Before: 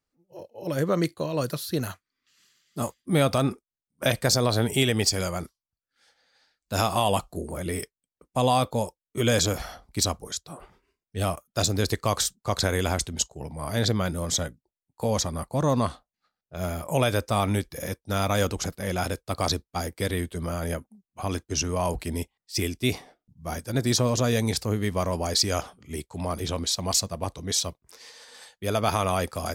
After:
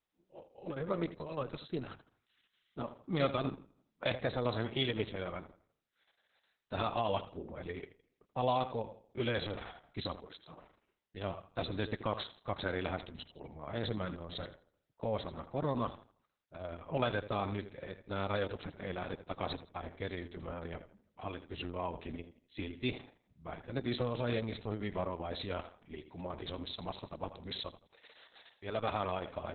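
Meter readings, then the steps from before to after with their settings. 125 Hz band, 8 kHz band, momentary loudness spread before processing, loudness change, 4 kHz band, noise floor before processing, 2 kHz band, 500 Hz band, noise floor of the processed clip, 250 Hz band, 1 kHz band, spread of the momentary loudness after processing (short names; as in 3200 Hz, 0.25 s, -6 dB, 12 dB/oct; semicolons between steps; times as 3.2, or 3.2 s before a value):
-13.5 dB, under -40 dB, 12 LU, -12.0 dB, -14.0 dB, under -85 dBFS, -10.0 dB, -10.0 dB, -82 dBFS, -11.5 dB, -10.0 dB, 15 LU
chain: low shelf 84 Hz -10 dB; on a send: darkening echo 82 ms, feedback 33%, low-pass 5000 Hz, level -12.5 dB; on the sum: gain -8.5 dB; Opus 6 kbps 48000 Hz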